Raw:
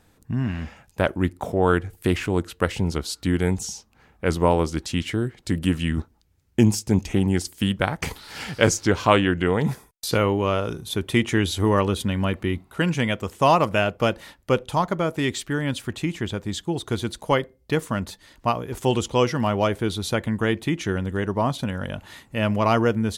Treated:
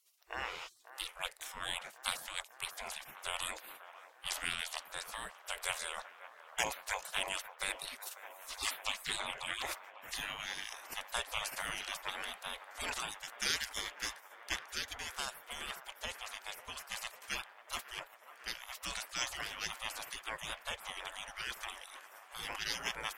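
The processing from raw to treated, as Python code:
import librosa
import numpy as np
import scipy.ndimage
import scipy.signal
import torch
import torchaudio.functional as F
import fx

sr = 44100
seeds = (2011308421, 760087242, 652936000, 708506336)

y = fx.spec_gate(x, sr, threshold_db=-30, keep='weak')
y = fx.high_shelf(y, sr, hz=12000.0, db=-4.5)
y = fx.echo_wet_bandpass(y, sr, ms=545, feedback_pct=82, hz=910.0, wet_db=-12.5)
y = y * librosa.db_to_amplitude(6.0)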